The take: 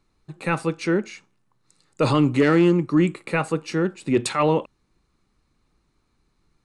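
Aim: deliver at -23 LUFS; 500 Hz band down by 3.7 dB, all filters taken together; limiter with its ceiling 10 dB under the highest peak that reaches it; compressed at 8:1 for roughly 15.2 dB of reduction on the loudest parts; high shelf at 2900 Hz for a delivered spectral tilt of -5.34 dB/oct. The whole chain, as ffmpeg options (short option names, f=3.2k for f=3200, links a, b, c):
-af "equalizer=f=500:t=o:g=-5,highshelf=f=2.9k:g=-3,acompressor=threshold=-31dB:ratio=8,volume=15.5dB,alimiter=limit=-12dB:level=0:latency=1"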